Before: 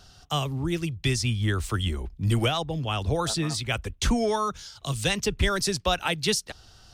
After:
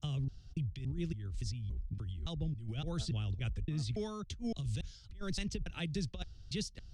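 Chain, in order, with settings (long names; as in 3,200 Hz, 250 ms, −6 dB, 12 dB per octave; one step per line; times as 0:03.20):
slices reordered back to front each 283 ms, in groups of 2
guitar amp tone stack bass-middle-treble 10-0-1
compressor whose output falls as the input rises −44 dBFS, ratio −1
high-frequency loss of the air 85 metres
level +6.5 dB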